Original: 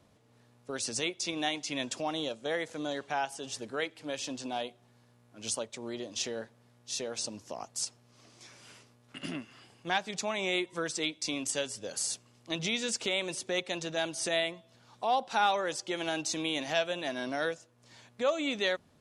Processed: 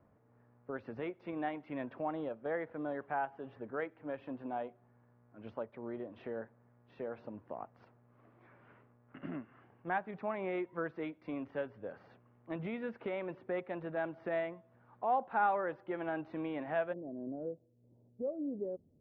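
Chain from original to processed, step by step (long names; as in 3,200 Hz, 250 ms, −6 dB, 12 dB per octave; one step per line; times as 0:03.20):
inverse Chebyshev low-pass filter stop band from 7,100 Hz, stop band 70 dB, from 0:16.92 stop band from 2,200 Hz
level −3 dB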